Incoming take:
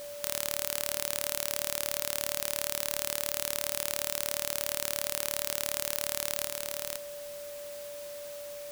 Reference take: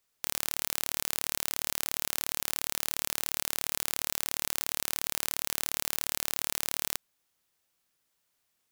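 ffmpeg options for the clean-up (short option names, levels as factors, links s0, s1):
-af "bandreject=f=580:w=30,afwtdn=0.004,asetnsamples=n=441:p=0,asendcmd='6.45 volume volume 4dB',volume=1"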